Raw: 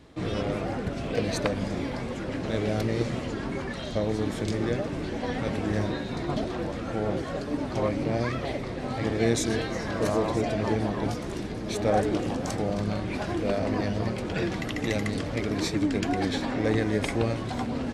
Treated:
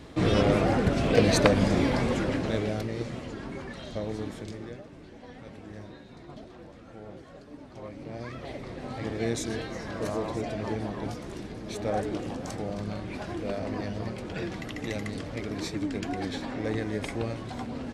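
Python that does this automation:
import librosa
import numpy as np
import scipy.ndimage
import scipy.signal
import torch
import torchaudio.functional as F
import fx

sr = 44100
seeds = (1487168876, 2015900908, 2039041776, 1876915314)

y = fx.gain(x, sr, db=fx.line((2.16, 6.5), (2.89, -6.0), (4.2, -6.0), (4.87, -16.0), (7.77, -16.0), (8.7, -5.5)))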